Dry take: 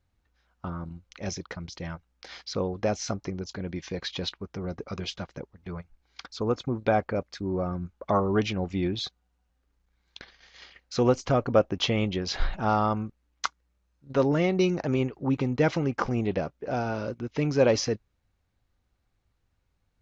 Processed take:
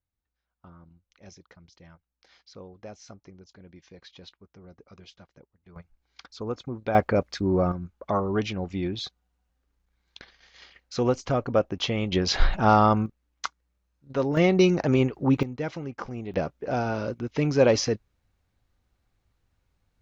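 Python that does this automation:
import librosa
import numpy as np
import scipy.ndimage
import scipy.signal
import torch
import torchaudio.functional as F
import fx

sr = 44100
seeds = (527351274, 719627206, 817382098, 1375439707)

y = fx.gain(x, sr, db=fx.steps((0.0, -15.5), (5.76, -5.0), (6.95, 6.0), (7.72, -1.5), (12.12, 6.0), (13.06, -2.5), (14.37, 4.5), (15.43, -8.0), (16.34, 2.0)))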